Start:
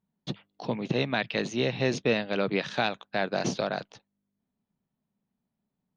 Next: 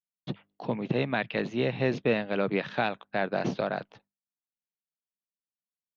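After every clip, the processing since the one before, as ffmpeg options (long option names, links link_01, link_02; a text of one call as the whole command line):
ffmpeg -i in.wav -af "agate=range=-33dB:threshold=-55dB:ratio=3:detection=peak,lowpass=2700" out.wav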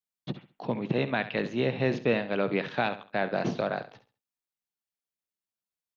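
ffmpeg -i in.wav -af "aecho=1:1:68|136|204:0.224|0.0649|0.0188" out.wav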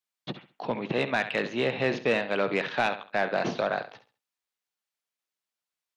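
ffmpeg -i in.wav -filter_complex "[0:a]asplit=2[link_01][link_02];[link_02]highpass=frequency=720:poles=1,volume=12dB,asoftclip=type=tanh:threshold=-12.5dB[link_03];[link_01][link_03]amix=inputs=2:normalize=0,lowpass=frequency=5500:poles=1,volume=-6dB,volume=-1dB" out.wav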